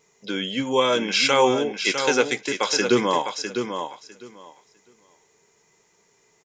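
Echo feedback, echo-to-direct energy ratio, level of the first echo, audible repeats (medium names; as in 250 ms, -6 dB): 16%, -7.5 dB, -7.5 dB, 2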